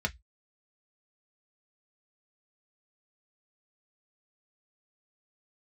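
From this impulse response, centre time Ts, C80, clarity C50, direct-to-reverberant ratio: 5 ms, 39.5 dB, 26.5 dB, 3.0 dB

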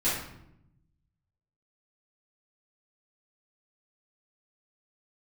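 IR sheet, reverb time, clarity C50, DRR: 0.80 s, 1.5 dB, -12.5 dB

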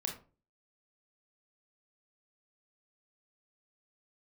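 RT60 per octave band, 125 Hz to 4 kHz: 0.55 s, 0.45 s, 0.40 s, 0.35 s, 0.25 s, 0.20 s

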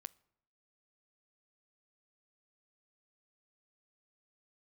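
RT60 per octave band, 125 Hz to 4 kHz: 0.80 s, 0.80 s, 0.75 s, 0.70 s, 0.60 s, 0.50 s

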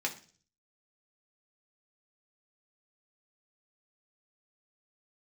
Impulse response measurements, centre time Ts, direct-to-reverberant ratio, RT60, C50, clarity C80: 11 ms, 0.0 dB, 0.40 s, 13.0 dB, 17.5 dB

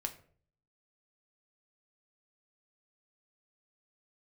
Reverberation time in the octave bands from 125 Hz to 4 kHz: 0.80 s, 0.60 s, 0.55 s, 0.45 s, 0.40 s, 0.30 s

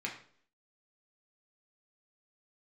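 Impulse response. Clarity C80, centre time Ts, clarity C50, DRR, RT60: 12.0 dB, 22 ms, 8.5 dB, -2.0 dB, 0.55 s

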